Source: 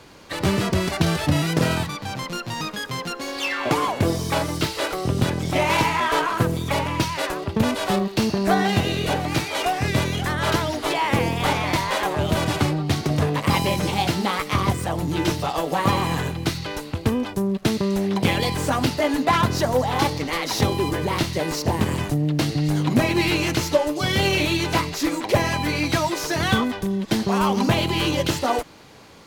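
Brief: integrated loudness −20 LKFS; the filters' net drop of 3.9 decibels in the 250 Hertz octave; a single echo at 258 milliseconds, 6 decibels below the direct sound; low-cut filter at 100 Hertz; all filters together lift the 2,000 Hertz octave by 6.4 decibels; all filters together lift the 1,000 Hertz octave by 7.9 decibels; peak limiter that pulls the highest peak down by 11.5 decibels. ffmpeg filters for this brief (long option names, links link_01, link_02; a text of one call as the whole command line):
ffmpeg -i in.wav -af "highpass=100,equalizer=frequency=250:width_type=o:gain=-6,equalizer=frequency=1000:width_type=o:gain=8.5,equalizer=frequency=2000:width_type=o:gain=5.5,alimiter=limit=-11.5dB:level=0:latency=1,aecho=1:1:258:0.501,volume=1dB" out.wav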